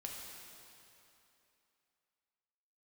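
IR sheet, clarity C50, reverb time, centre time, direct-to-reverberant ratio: 0.5 dB, 2.9 s, 0.122 s, -1.5 dB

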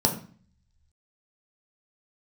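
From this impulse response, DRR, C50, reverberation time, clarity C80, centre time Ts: 2.0 dB, 10.5 dB, 0.45 s, 14.0 dB, 15 ms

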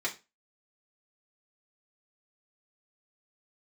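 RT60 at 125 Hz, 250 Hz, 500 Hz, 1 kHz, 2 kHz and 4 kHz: 0.30, 0.30, 0.30, 0.25, 0.25, 0.25 s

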